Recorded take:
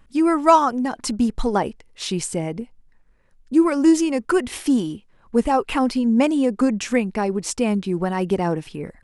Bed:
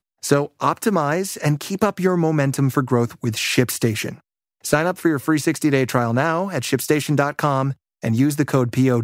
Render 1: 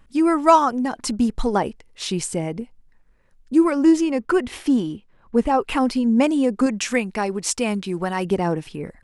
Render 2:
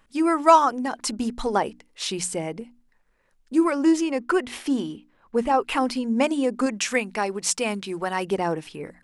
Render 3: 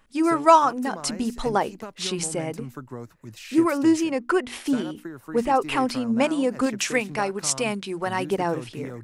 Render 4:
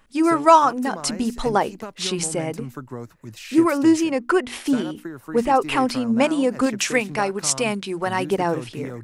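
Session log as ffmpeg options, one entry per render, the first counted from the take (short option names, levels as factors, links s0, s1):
-filter_complex "[0:a]asettb=1/sr,asplit=3[s0][s1][s2];[s0]atrim=end=3.714[s3];[s1]atrim=start=3.71:end=5.62,asetpts=PTS-STARTPTS,afade=t=in:d=0.004:c=qsin,afade=t=out:st=1.906:d=0.004:c=qsin,highshelf=f=6100:g=-10.5[s4];[s2]atrim=start=5.616[s5];[s3][s4]acrossfade=d=0.004:c1=hsin:c2=qsin[s6];[s6][s5]acrossfade=d=0.004:c1=qsin:c2=hsin,asettb=1/sr,asplit=3[s7][s8][s9];[s7]atrim=end=6.664[s10];[s8]atrim=start=6.66:end=8.25,asetpts=PTS-STARTPTS,afade=t=in:d=0.004:c=qsin,afade=t=out:st=1.586:d=0.004:c=qsin,tiltshelf=f=770:g=-4[s11];[s9]atrim=start=8.246[s12];[s10][s11]acrossfade=d=0.004:c1=hsin:c2=qsin[s13];[s13][s12]acrossfade=d=0.004:c1=qsin:c2=hsin"
-af "lowshelf=f=240:g=-11,bandreject=f=60:t=h:w=6,bandreject=f=120:t=h:w=6,bandreject=f=180:t=h:w=6,bandreject=f=240:t=h:w=6,bandreject=f=300:t=h:w=6"
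-filter_complex "[1:a]volume=0.112[s0];[0:a][s0]amix=inputs=2:normalize=0"
-af "volume=1.41,alimiter=limit=0.794:level=0:latency=1"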